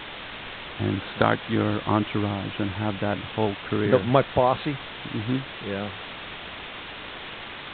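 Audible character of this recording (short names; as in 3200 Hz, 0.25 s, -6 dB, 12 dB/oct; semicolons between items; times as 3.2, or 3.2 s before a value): a quantiser's noise floor 6-bit, dither triangular; G.726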